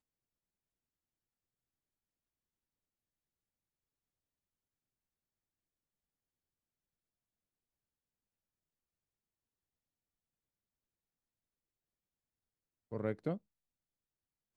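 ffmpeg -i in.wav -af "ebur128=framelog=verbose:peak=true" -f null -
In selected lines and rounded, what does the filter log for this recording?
Integrated loudness:
  I:         -40.7 LUFS
  Threshold: -50.7 LUFS
Loudness range:
  LRA:         3.1 LU
  Threshold: -67.0 LUFS
  LRA low:   -49.5 LUFS
  LRA high:  -46.4 LUFS
True peak:
  Peak:      -22.6 dBFS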